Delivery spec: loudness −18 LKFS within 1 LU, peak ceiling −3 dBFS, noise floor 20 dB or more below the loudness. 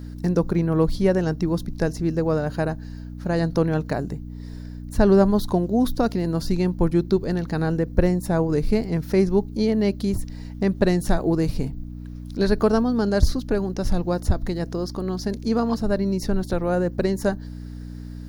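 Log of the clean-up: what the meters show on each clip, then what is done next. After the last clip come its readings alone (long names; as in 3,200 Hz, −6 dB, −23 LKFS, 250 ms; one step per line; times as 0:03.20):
mains hum 60 Hz; hum harmonics up to 300 Hz; level of the hum −32 dBFS; integrated loudness −23.0 LKFS; sample peak −3.5 dBFS; target loudness −18.0 LKFS
→ hum removal 60 Hz, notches 5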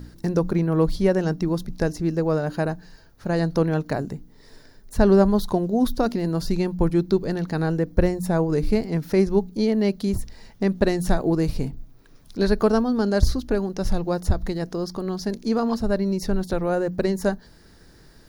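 mains hum none found; integrated loudness −23.5 LKFS; sample peak −4.0 dBFS; target loudness −18.0 LKFS
→ level +5.5 dB
brickwall limiter −3 dBFS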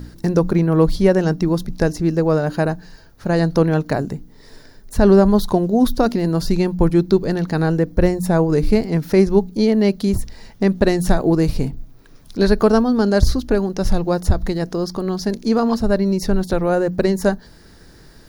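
integrated loudness −18.0 LKFS; sample peak −3.0 dBFS; background noise floor −45 dBFS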